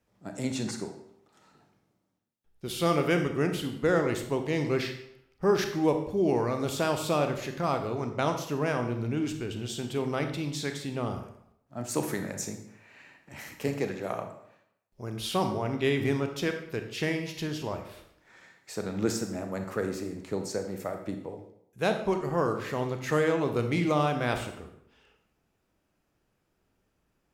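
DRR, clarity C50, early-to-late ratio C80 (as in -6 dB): 5.5 dB, 8.0 dB, 10.5 dB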